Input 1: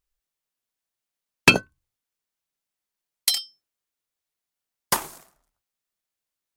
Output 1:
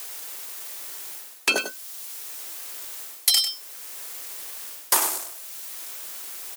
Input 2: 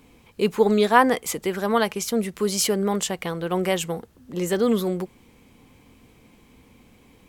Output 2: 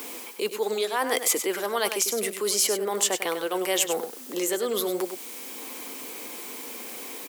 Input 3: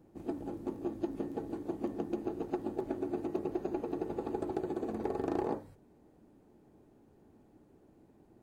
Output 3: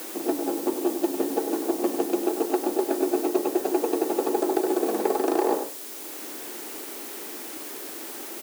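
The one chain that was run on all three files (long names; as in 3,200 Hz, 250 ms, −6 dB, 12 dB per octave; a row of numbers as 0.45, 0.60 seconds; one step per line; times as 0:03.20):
bit-depth reduction 10 bits, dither triangular
reversed playback
downward compressor 12 to 1, threshold −29 dBFS
reversed playback
high-pass filter 310 Hz 24 dB per octave
high-shelf EQ 4,900 Hz +9.5 dB
on a send: single-tap delay 98 ms −9.5 dB
on the sum: multiband upward and downward compressor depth 40%
loudness normalisation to −27 LKFS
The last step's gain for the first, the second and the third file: +12.5, +6.5, +13.5 decibels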